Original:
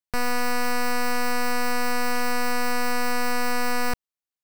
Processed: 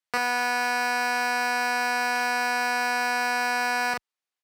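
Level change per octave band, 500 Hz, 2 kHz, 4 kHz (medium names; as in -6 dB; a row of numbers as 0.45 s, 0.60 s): -4.0 dB, +4.0 dB, +1.0 dB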